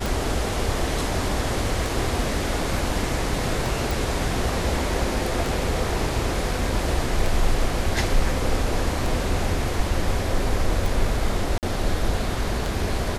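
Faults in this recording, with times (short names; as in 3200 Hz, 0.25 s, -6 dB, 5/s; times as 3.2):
tick 33 1/3 rpm
3.91 pop
11.58–11.63 gap 48 ms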